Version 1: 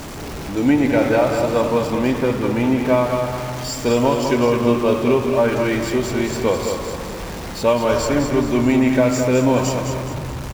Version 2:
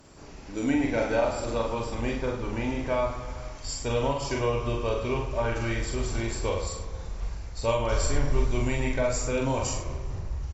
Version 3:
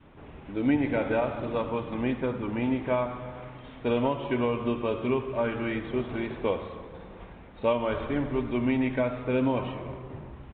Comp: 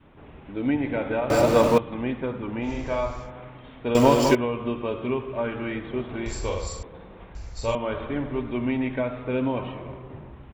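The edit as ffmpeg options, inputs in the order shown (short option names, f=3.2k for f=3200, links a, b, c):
-filter_complex "[0:a]asplit=2[a][b];[1:a]asplit=3[c][d][e];[2:a]asplit=6[f][g][h][i][j][k];[f]atrim=end=1.302[l];[a]atrim=start=1.298:end=1.782[m];[g]atrim=start=1.778:end=2.71[n];[c]atrim=start=2.61:end=3.31[o];[h]atrim=start=3.21:end=3.952[p];[b]atrim=start=3.948:end=4.352[q];[i]atrim=start=4.348:end=6.262[r];[d]atrim=start=6.258:end=6.832[s];[j]atrim=start=6.828:end=7.352[t];[e]atrim=start=7.348:end=7.752[u];[k]atrim=start=7.748[v];[l][m]acrossfade=d=0.004:c1=hsin:c2=hsin[w];[w][n]acrossfade=d=0.004:c1=hsin:c2=hsin[x];[x][o]acrossfade=d=0.1:c1=tri:c2=tri[y];[y][p]acrossfade=d=0.1:c1=tri:c2=tri[z];[z][q]acrossfade=d=0.004:c1=hsin:c2=hsin[aa];[aa][r]acrossfade=d=0.004:c1=hsin:c2=hsin[ab];[ab][s]acrossfade=d=0.004:c1=hsin:c2=hsin[ac];[ac][t]acrossfade=d=0.004:c1=hsin:c2=hsin[ad];[ad][u]acrossfade=d=0.004:c1=hsin:c2=hsin[ae];[ae][v]acrossfade=d=0.004:c1=hsin:c2=hsin"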